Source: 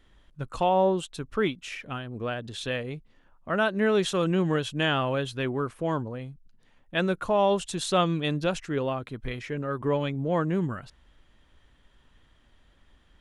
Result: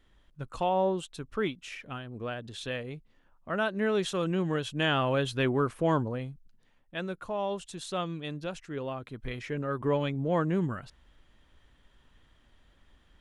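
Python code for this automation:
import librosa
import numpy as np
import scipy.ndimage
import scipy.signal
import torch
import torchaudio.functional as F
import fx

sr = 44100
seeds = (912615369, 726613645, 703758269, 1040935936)

y = fx.gain(x, sr, db=fx.line((4.52, -4.5), (5.38, 2.0), (6.16, 2.0), (7.01, -9.5), (8.57, -9.5), (9.49, -1.5)))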